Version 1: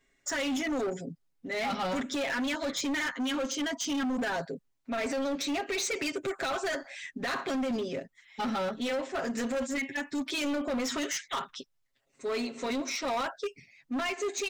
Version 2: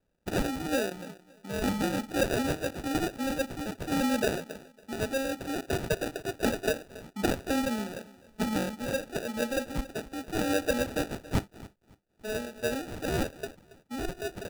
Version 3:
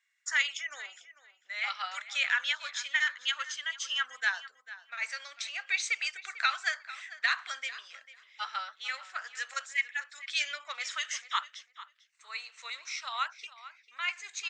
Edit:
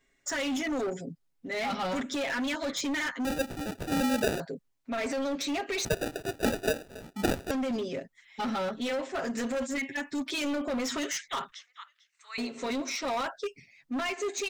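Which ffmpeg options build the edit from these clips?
-filter_complex "[1:a]asplit=2[s0][s1];[0:a]asplit=4[s2][s3][s4][s5];[s2]atrim=end=3.252[s6];[s0]atrim=start=3.248:end=4.402[s7];[s3]atrim=start=4.398:end=5.852[s8];[s1]atrim=start=5.848:end=7.512[s9];[s4]atrim=start=7.508:end=11.522[s10];[2:a]atrim=start=11.518:end=12.382[s11];[s5]atrim=start=12.378[s12];[s6][s7]acrossfade=d=0.004:c1=hsin:c2=hsin[s13];[s13][s8]acrossfade=d=0.004:c1=hsin:c2=hsin[s14];[s14][s9]acrossfade=d=0.004:c1=hsin:c2=hsin[s15];[s15][s10]acrossfade=d=0.004:c1=hsin:c2=hsin[s16];[s16][s11]acrossfade=d=0.004:c1=hsin:c2=hsin[s17];[s17][s12]acrossfade=d=0.004:c1=hsin:c2=hsin"

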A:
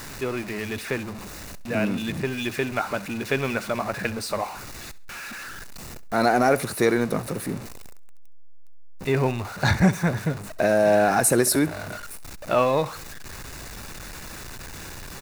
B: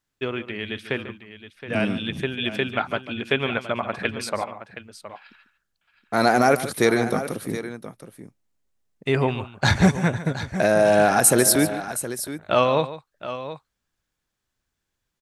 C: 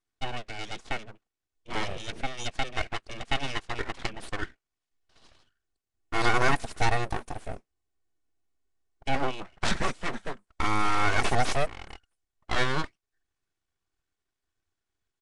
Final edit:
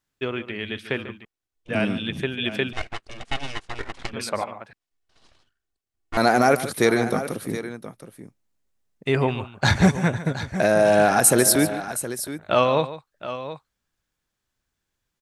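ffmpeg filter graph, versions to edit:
-filter_complex "[2:a]asplit=3[s0][s1][s2];[1:a]asplit=4[s3][s4][s5][s6];[s3]atrim=end=1.252[s7];[s0]atrim=start=1.248:end=1.692[s8];[s4]atrim=start=1.688:end=2.732[s9];[s1]atrim=start=2.728:end=4.132[s10];[s5]atrim=start=4.128:end=4.732[s11];[s2]atrim=start=4.728:end=6.172[s12];[s6]atrim=start=6.168[s13];[s7][s8]acrossfade=d=0.004:c1=hsin:c2=hsin[s14];[s14][s9]acrossfade=d=0.004:c1=hsin:c2=hsin[s15];[s15][s10]acrossfade=d=0.004:c1=hsin:c2=hsin[s16];[s16][s11]acrossfade=d=0.004:c1=hsin:c2=hsin[s17];[s17][s12]acrossfade=d=0.004:c1=hsin:c2=hsin[s18];[s18][s13]acrossfade=d=0.004:c1=hsin:c2=hsin"

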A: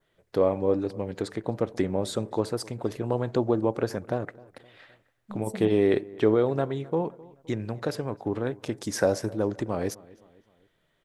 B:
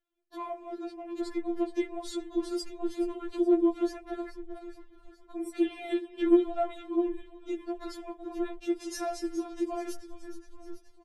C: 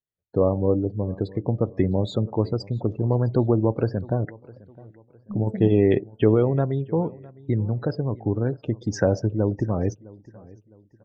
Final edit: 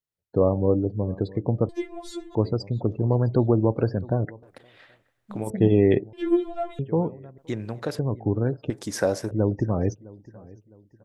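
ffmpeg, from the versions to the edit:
-filter_complex "[1:a]asplit=2[s0][s1];[0:a]asplit=3[s2][s3][s4];[2:a]asplit=6[s5][s6][s7][s8][s9][s10];[s5]atrim=end=1.692[s11];[s0]atrim=start=1.688:end=2.352[s12];[s6]atrim=start=2.348:end=4.432[s13];[s2]atrim=start=4.428:end=5.502[s14];[s7]atrim=start=5.498:end=6.132[s15];[s1]atrim=start=6.128:end=6.792[s16];[s8]atrim=start=6.788:end=7.382[s17];[s3]atrim=start=7.378:end=7.992[s18];[s9]atrim=start=7.988:end=8.702[s19];[s4]atrim=start=8.698:end=9.312[s20];[s10]atrim=start=9.308[s21];[s11][s12]acrossfade=d=0.004:c1=hsin:c2=hsin[s22];[s22][s13]acrossfade=d=0.004:c1=hsin:c2=hsin[s23];[s23][s14]acrossfade=d=0.004:c1=hsin:c2=hsin[s24];[s24][s15]acrossfade=d=0.004:c1=hsin:c2=hsin[s25];[s25][s16]acrossfade=d=0.004:c1=hsin:c2=hsin[s26];[s26][s17]acrossfade=d=0.004:c1=hsin:c2=hsin[s27];[s27][s18]acrossfade=d=0.004:c1=hsin:c2=hsin[s28];[s28][s19]acrossfade=d=0.004:c1=hsin:c2=hsin[s29];[s29][s20]acrossfade=d=0.004:c1=hsin:c2=hsin[s30];[s30][s21]acrossfade=d=0.004:c1=hsin:c2=hsin"

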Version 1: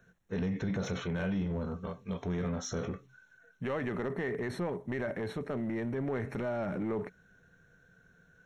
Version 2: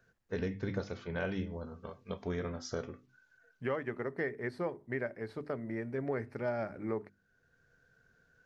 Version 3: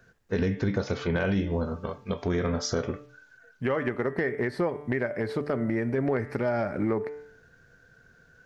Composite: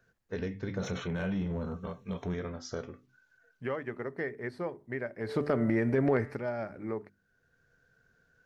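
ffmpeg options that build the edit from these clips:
-filter_complex "[1:a]asplit=3[s0][s1][s2];[s0]atrim=end=0.792[s3];[0:a]atrim=start=0.788:end=2.342[s4];[s1]atrim=start=2.338:end=5.4[s5];[2:a]atrim=start=5.16:end=6.42[s6];[s2]atrim=start=6.18[s7];[s3][s4]acrossfade=d=0.004:c1=hsin:c2=hsin[s8];[s8][s5]acrossfade=d=0.004:c1=hsin:c2=hsin[s9];[s9][s6]acrossfade=d=0.24:c1=tri:c2=tri[s10];[s10][s7]acrossfade=d=0.24:c1=tri:c2=tri"

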